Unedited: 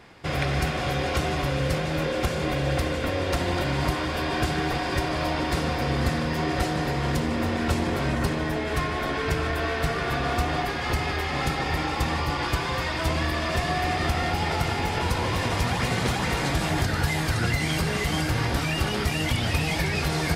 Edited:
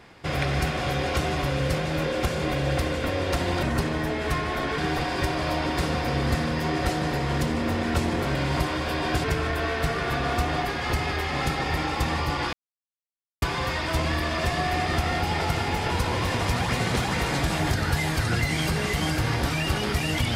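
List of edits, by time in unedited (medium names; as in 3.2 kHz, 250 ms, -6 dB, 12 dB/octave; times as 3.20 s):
3.63–4.52 s: swap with 8.09–9.24 s
12.53 s: insert silence 0.89 s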